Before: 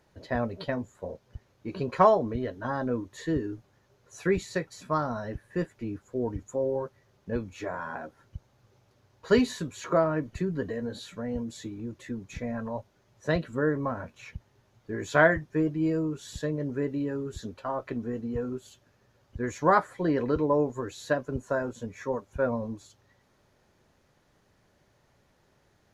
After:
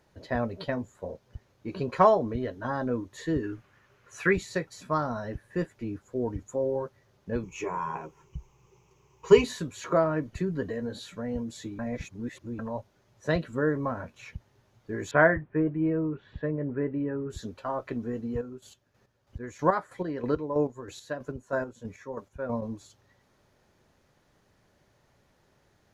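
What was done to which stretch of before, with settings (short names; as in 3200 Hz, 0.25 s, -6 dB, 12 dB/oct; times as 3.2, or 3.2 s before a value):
3.43–4.33 band shelf 1800 Hz +9 dB
7.43–9.44 ripple EQ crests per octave 0.74, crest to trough 15 dB
11.79–12.59 reverse
15.11–17.3 LPF 2300 Hz 24 dB/oct
18.3–22.62 chopper 3.1 Hz, depth 60%, duty 35%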